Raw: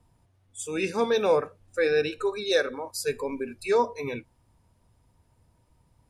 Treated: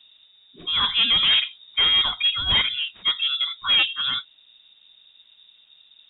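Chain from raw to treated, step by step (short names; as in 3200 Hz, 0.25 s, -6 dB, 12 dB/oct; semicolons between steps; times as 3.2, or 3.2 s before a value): one diode to ground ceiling -22 dBFS; sine folder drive 9 dB, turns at -11 dBFS; inverted band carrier 3700 Hz; gain -4 dB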